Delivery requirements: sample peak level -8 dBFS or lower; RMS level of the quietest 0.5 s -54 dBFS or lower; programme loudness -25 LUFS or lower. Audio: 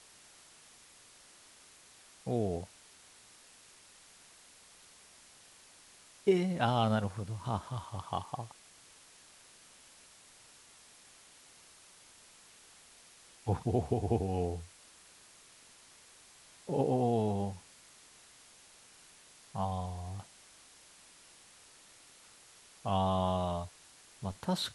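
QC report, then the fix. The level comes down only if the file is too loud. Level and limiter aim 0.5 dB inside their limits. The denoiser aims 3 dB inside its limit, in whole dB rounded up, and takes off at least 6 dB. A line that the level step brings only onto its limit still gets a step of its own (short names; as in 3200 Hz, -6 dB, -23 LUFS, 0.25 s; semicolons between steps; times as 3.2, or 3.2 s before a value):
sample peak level -14.0 dBFS: OK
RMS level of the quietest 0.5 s -59 dBFS: OK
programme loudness -34.5 LUFS: OK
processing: none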